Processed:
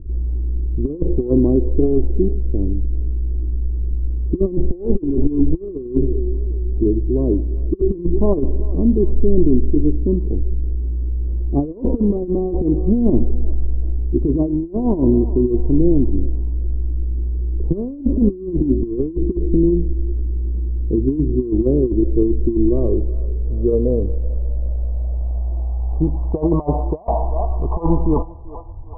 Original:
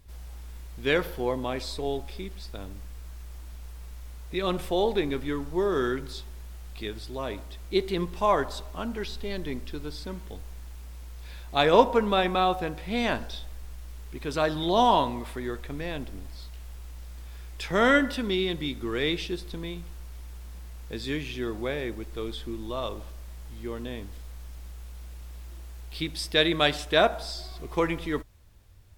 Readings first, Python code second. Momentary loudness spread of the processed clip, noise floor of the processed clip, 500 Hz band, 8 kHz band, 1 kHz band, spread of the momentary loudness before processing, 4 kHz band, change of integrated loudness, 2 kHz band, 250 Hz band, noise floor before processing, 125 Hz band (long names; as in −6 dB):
7 LU, −30 dBFS, +7.0 dB, below −35 dB, −5.5 dB, 21 LU, below −40 dB, +8.0 dB, below −40 dB, +14.0 dB, −42 dBFS, +17.5 dB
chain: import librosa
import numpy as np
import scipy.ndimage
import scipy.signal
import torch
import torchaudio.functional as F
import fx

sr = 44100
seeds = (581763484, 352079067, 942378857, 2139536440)

p1 = fx.brickwall_bandstop(x, sr, low_hz=1200.0, high_hz=7000.0)
p2 = p1 + fx.echo_thinned(p1, sr, ms=385, feedback_pct=59, hz=490.0, wet_db=-18, dry=0)
p3 = fx.filter_sweep_lowpass(p2, sr, from_hz=340.0, to_hz=890.0, start_s=22.53, end_s=26.48, q=4.8)
p4 = fx.over_compress(p3, sr, threshold_db=-25.0, ratio=-0.5)
p5 = fx.tilt_eq(p4, sr, slope=-3.5)
y = p5 * librosa.db_to_amplitude(2.5)